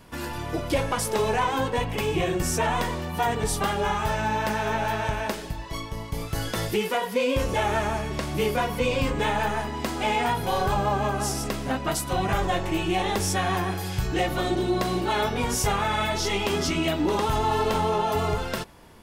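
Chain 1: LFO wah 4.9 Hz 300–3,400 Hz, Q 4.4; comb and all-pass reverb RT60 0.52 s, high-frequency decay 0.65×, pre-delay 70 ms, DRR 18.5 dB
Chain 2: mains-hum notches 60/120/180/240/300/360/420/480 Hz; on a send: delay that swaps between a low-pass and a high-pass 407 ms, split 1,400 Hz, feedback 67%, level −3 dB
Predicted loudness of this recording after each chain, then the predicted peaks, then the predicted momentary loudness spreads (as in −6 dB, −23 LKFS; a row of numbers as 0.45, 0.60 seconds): −36.5, −24.5 LKFS; −18.5, −10.0 dBFS; 7, 4 LU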